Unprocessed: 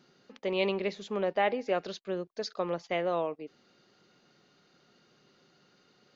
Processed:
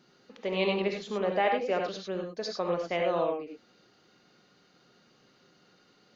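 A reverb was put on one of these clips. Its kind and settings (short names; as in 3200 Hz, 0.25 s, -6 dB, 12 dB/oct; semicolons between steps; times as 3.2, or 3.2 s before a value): non-linear reverb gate 0.12 s rising, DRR 2 dB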